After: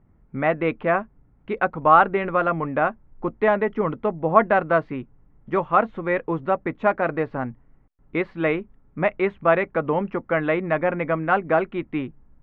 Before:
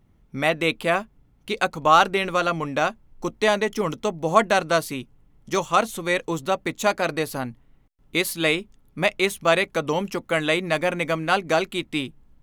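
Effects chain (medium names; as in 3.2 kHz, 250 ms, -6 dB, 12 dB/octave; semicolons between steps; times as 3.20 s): low-pass 1.9 kHz 24 dB/octave; trim +1.5 dB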